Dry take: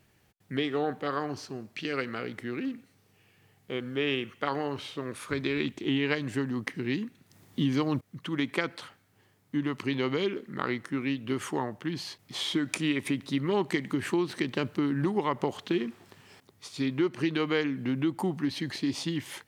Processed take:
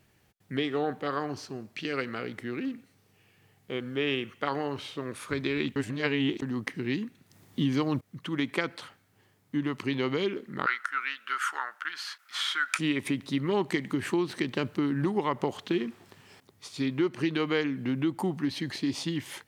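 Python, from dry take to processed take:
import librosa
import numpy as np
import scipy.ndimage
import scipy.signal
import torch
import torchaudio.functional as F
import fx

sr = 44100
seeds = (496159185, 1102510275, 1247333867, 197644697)

y = fx.highpass_res(x, sr, hz=1400.0, q=8.1, at=(10.66, 12.79))
y = fx.edit(y, sr, fx.reverse_span(start_s=5.76, length_s=0.66), tone=tone)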